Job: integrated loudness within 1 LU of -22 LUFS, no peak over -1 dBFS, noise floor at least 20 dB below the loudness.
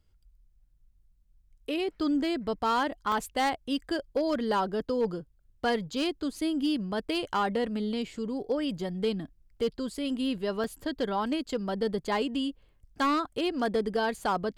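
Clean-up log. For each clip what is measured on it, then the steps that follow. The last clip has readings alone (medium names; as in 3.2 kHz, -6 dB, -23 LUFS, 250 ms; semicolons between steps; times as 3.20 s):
clipped samples 0.5%; clipping level -20.5 dBFS; dropouts 2; longest dropout 2.2 ms; loudness -30.5 LUFS; peak level -20.5 dBFS; loudness target -22.0 LUFS
-> clip repair -20.5 dBFS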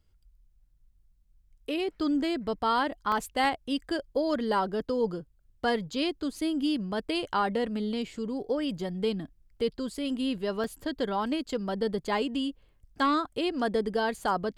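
clipped samples 0.0%; dropouts 2; longest dropout 2.2 ms
-> interpolate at 3.12/10.64 s, 2.2 ms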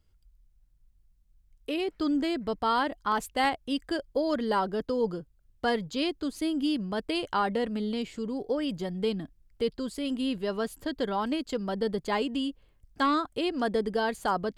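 dropouts 0; loudness -30.0 LUFS; peak level -12.0 dBFS; loudness target -22.0 LUFS
-> trim +8 dB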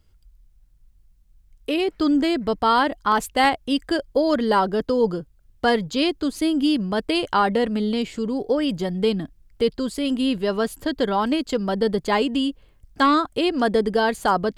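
loudness -22.0 LUFS; peak level -4.0 dBFS; noise floor -57 dBFS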